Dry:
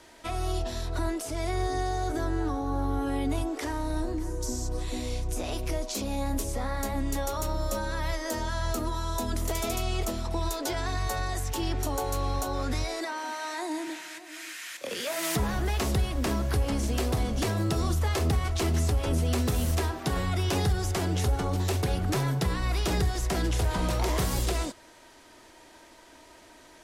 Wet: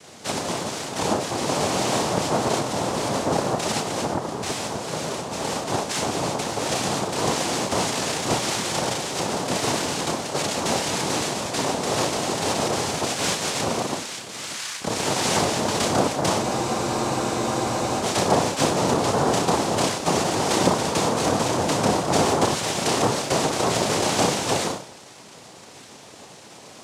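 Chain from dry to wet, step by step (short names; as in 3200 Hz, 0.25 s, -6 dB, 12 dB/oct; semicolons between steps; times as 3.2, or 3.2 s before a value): flutter echo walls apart 5.3 m, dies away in 0.49 s; noise vocoder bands 2; spectral freeze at 16.44, 1.56 s; gain +6.5 dB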